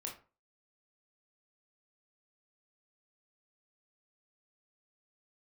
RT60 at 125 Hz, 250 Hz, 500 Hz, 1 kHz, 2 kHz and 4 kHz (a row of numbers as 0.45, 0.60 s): 0.40, 0.35, 0.35, 0.35, 0.30, 0.20 s